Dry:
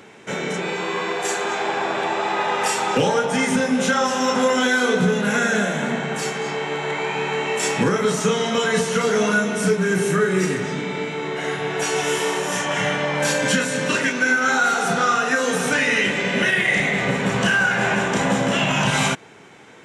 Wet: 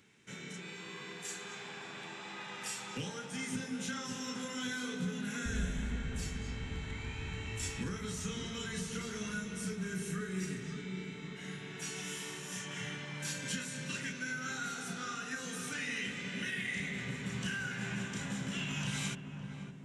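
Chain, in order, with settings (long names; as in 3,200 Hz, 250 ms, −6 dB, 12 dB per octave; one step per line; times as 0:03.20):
0:05.45–0:07.70: sub-octave generator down 2 octaves, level +2 dB
guitar amp tone stack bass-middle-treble 6-0-2
feedback echo with a low-pass in the loop 561 ms, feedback 64%, low-pass 860 Hz, level −6 dB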